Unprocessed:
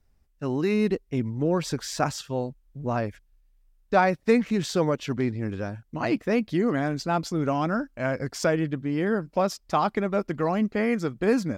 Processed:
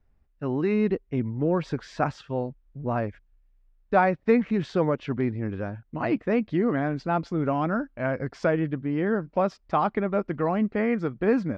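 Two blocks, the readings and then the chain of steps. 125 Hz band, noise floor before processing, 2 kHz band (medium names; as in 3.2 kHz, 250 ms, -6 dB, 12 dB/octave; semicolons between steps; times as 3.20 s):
0.0 dB, -65 dBFS, -1.0 dB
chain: low-pass 2.4 kHz 12 dB/octave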